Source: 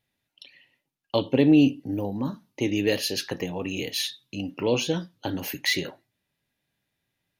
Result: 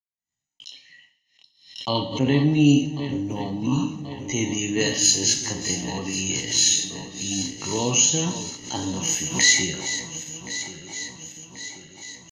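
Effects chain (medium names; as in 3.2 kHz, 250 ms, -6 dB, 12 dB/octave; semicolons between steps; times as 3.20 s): backward echo that repeats 324 ms, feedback 72%, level -11 dB; gate -57 dBFS, range -51 dB; resonant low-pass 6.7 kHz, resonance Q 15; comb 1 ms, depth 56%; tempo 0.6×; two-slope reverb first 0.58 s, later 2.6 s, from -26 dB, DRR 4.5 dB; swell ahead of each attack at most 120 dB/s; trim -1 dB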